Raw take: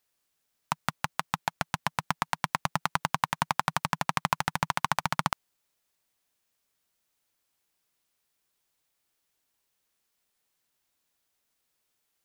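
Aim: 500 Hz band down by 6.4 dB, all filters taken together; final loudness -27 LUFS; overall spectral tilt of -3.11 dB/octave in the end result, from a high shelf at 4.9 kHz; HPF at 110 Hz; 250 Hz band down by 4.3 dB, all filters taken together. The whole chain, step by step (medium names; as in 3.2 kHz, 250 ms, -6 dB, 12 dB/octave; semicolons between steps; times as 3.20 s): high-pass 110 Hz; peaking EQ 250 Hz -5 dB; peaking EQ 500 Hz -8.5 dB; treble shelf 4.9 kHz -7 dB; trim +6 dB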